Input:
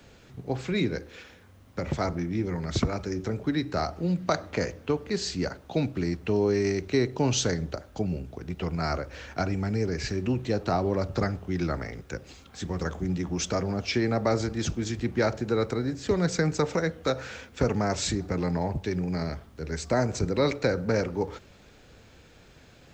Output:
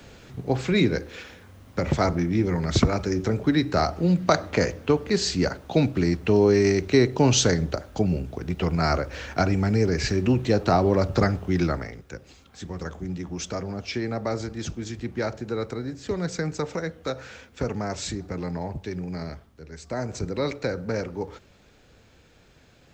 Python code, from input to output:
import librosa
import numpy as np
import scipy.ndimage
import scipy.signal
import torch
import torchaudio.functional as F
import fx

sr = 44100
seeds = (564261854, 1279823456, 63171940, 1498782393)

y = fx.gain(x, sr, db=fx.line((11.6, 6.0), (12.02, -3.0), (19.31, -3.0), (19.71, -9.5), (20.15, -2.5)))